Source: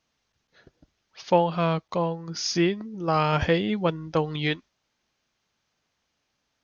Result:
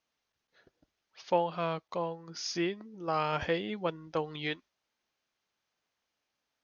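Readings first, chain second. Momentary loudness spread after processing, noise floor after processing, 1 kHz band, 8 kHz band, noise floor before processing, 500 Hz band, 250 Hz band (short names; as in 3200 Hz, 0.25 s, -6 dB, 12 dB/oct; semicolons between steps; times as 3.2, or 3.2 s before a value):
7 LU, -85 dBFS, -7.0 dB, n/a, -77 dBFS, -7.5 dB, -10.5 dB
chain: tone controls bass -8 dB, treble -2 dB; gain -7 dB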